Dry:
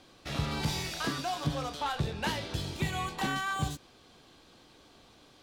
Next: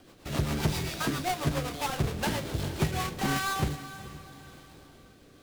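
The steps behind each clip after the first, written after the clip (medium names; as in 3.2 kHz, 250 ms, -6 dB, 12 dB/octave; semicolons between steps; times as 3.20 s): square wave that keeps the level; rotary cabinet horn 7.5 Hz, later 0.8 Hz, at 2.50 s; echo that smears into a reverb 450 ms, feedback 41%, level -14 dB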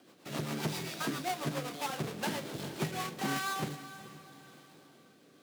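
high-pass 150 Hz 24 dB/octave; trim -4.5 dB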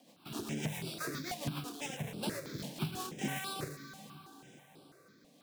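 dynamic bell 920 Hz, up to -5 dB, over -51 dBFS, Q 0.97; stepped phaser 6.1 Hz 370–6500 Hz; trim +1 dB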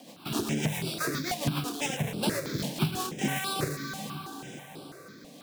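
gain riding within 5 dB 0.5 s; trim +9 dB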